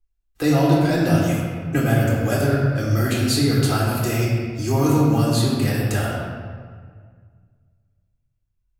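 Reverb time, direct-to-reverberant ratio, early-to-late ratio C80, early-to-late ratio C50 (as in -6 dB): 1.8 s, -6.5 dB, 1.0 dB, -0.5 dB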